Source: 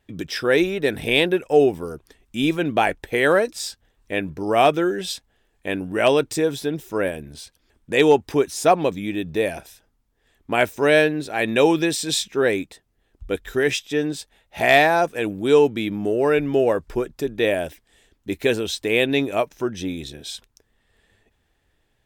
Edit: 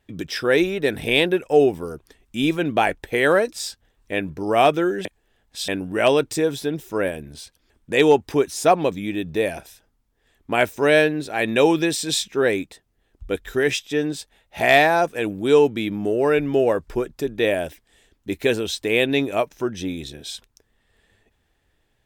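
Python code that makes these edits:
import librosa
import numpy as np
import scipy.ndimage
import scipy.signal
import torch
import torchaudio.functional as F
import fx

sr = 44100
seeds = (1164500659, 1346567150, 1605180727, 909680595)

y = fx.edit(x, sr, fx.reverse_span(start_s=5.05, length_s=0.63), tone=tone)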